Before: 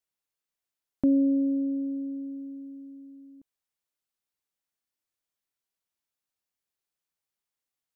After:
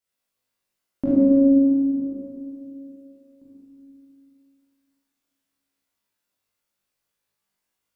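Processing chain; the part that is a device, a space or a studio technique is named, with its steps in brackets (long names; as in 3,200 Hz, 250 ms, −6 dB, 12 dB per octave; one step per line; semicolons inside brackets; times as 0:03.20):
0:01.09–0:02.00: tilt shelving filter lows +6 dB, about 680 Hz
tunnel (flutter between parallel walls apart 3.4 metres, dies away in 0.32 s; convolution reverb RT60 2.8 s, pre-delay 21 ms, DRR −6.5 dB)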